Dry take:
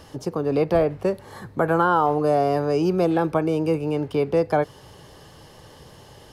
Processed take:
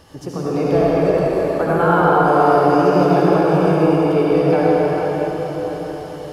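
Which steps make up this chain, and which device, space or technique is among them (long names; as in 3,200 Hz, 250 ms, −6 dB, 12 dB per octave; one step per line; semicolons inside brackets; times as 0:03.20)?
cathedral (convolution reverb RT60 5.8 s, pre-delay 65 ms, DRR −8 dB)
level −2 dB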